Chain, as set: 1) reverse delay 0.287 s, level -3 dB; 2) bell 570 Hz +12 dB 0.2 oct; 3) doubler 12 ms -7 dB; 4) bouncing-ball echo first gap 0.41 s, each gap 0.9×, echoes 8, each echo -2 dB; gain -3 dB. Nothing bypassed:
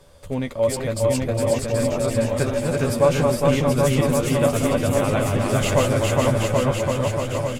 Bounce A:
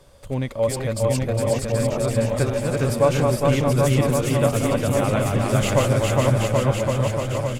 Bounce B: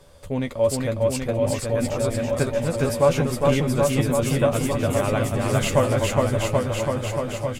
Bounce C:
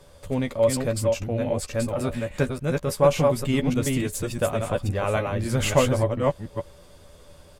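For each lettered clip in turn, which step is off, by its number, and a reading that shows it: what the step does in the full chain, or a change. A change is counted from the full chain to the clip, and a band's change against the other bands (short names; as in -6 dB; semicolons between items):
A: 3, 125 Hz band +3.0 dB; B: 1, loudness change -1.5 LU; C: 4, momentary loudness spread change +4 LU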